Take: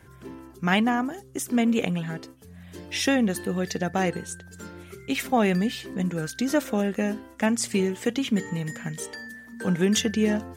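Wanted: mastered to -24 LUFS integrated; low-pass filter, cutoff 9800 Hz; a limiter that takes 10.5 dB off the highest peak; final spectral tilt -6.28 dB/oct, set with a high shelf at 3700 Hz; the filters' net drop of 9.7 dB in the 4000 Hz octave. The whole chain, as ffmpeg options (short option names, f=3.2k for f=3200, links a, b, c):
-af "lowpass=9.8k,highshelf=f=3.7k:g=-8,equalizer=f=4k:t=o:g=-8.5,volume=7dB,alimiter=limit=-14dB:level=0:latency=1"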